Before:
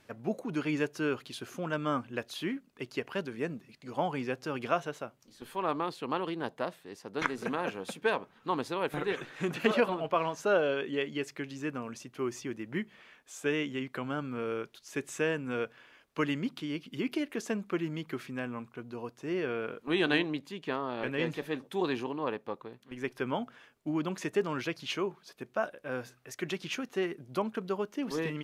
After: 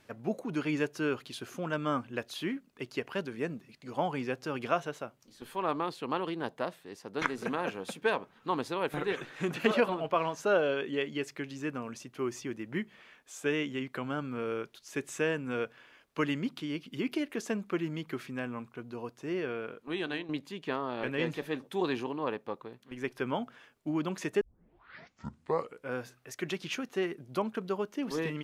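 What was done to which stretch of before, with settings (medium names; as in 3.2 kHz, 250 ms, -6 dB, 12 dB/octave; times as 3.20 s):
19.19–20.29 s: fade out, to -11.5 dB
24.41 s: tape start 1.55 s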